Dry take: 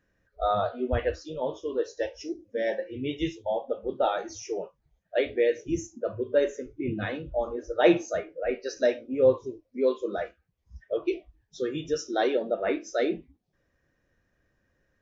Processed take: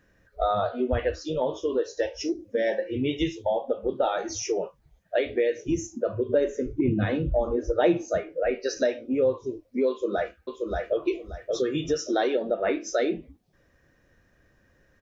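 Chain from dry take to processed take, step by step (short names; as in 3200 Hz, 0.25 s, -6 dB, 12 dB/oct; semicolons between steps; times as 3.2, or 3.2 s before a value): 6.29–8.18 low shelf 450 Hz +10 dB; compressor 3:1, threshold -33 dBFS, peak gain reduction 17.5 dB; 9.89–11.01 echo throw 0.58 s, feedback 25%, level -3 dB; gain +9 dB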